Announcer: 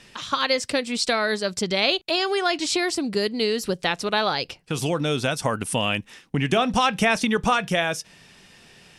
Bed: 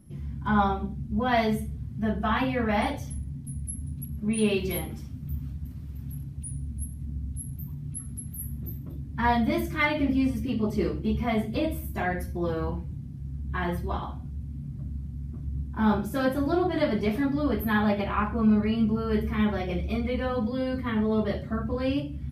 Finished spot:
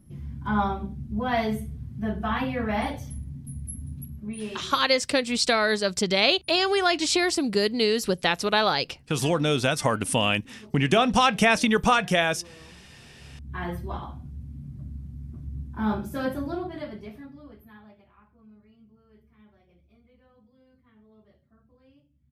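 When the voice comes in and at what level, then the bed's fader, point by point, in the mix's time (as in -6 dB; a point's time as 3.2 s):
4.40 s, +0.5 dB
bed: 4 s -1.5 dB
4.99 s -21 dB
12.86 s -21 dB
13.61 s -3 dB
16.33 s -3 dB
18.16 s -32 dB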